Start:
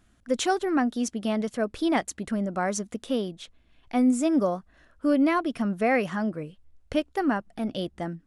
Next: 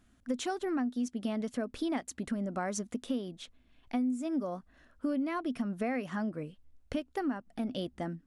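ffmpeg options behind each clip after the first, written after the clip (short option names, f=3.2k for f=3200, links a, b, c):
-af "equalizer=f=250:w=7.2:g=9.5,acompressor=threshold=-26dB:ratio=6,volume=-4dB"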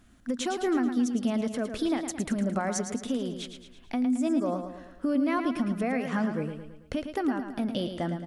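-af "alimiter=level_in=3dB:limit=-24dB:level=0:latency=1:release=172,volume=-3dB,aecho=1:1:110|220|330|440|550|660:0.398|0.195|0.0956|0.0468|0.023|0.0112,volume=7dB"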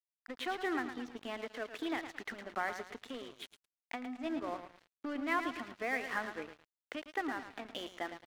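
-af "highpass=f=350:w=0.5412,highpass=f=350:w=1.3066,equalizer=f=380:t=q:w=4:g=-4,equalizer=f=560:t=q:w=4:g=-9,equalizer=f=1.9k:t=q:w=4:g=7,lowpass=f=3.8k:w=0.5412,lowpass=f=3.8k:w=1.3066,aeval=exprs='sgn(val(0))*max(abs(val(0))-0.00562,0)':c=same,volume=-2dB"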